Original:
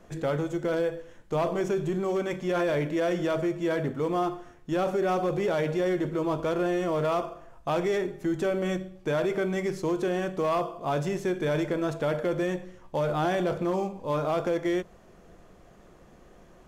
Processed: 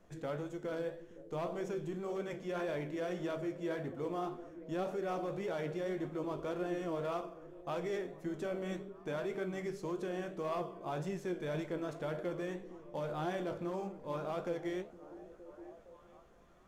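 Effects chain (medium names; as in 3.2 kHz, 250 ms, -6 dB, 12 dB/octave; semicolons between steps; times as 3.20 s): repeats whose band climbs or falls 463 ms, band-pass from 240 Hz, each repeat 0.7 oct, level -11 dB; flange 1.8 Hz, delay 9.5 ms, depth 9.7 ms, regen +63%; trim -7 dB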